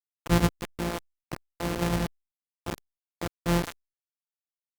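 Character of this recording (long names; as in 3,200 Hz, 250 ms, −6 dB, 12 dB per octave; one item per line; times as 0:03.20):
a buzz of ramps at a fixed pitch in blocks of 256 samples
chopped level 0.55 Hz, depth 65%, duty 30%
a quantiser's noise floor 6 bits, dither none
Opus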